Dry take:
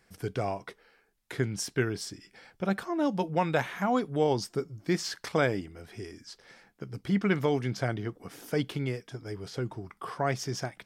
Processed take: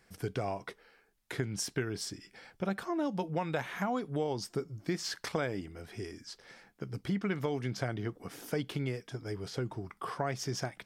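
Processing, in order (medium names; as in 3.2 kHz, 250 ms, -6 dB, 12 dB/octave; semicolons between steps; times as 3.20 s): compression 4:1, threshold -30 dBFS, peak gain reduction 8.5 dB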